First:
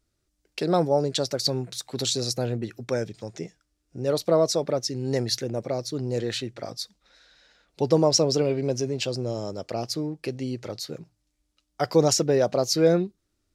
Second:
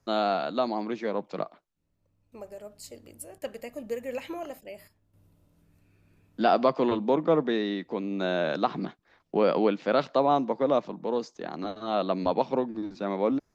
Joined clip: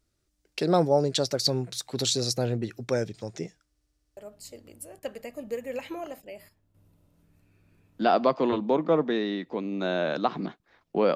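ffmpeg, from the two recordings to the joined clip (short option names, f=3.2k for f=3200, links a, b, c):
-filter_complex "[0:a]apad=whole_dur=11.15,atrim=end=11.15,asplit=8[a][b][c][d][e][f][g][h];[a]atrim=end=3.752[i];[b]atrim=start=3.688:end=3.752[j];[c]atrim=start=3.688:end=3.752[k];[d]atrim=start=3.688:end=3.752[l];[e]atrim=start=3.688:end=3.752[m];[f]atrim=start=3.688:end=3.752[n];[g]atrim=start=3.688:end=3.752[o];[h]atrim=start=3.688:end=3.752[p];[1:a]atrim=start=2.558:end=9.54[q];[i][j]acrossfade=d=0.004:c1=hsin:c2=hsin[r];[r][k]acrossfade=d=0.004:c1=hsin:c2=hsin[s];[s][l]acrossfade=d=0.004:c1=hsin:c2=hsin[t];[t][m]acrossfade=d=0.004:c1=hsin:c2=hsin[u];[u][n]acrossfade=d=0.004:c1=hsin:c2=hsin[v];[v][o]acrossfade=d=0.004:c1=hsin:c2=hsin[w];[w][p]acrossfade=d=0.004:c1=hsin:c2=hsin[x];[x][q]acrossfade=d=0.004:c1=hsin:c2=hsin"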